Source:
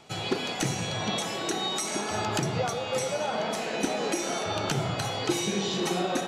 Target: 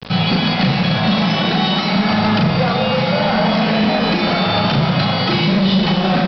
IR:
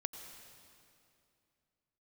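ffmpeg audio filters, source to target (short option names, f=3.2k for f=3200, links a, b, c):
-filter_complex "[0:a]lowshelf=f=250:t=q:w=3:g=11,acrossover=split=210|2300[a][b][c];[a]acompressor=threshold=-44dB:ratio=6[d];[d][b][c]amix=inputs=3:normalize=0,acrusher=bits=6:mix=0:aa=0.000001,aresample=11025,asoftclip=type=hard:threshold=-27dB,aresample=44100,asplit=2[e][f];[f]adelay=37,volume=-4dB[g];[e][g]amix=inputs=2:normalize=0[h];[1:a]atrim=start_sample=2205,afade=t=out:st=0.4:d=0.01,atrim=end_sample=18081[i];[h][i]afir=irnorm=-1:irlink=0,alimiter=level_in=22.5dB:limit=-1dB:release=50:level=0:latency=1,volume=-6.5dB"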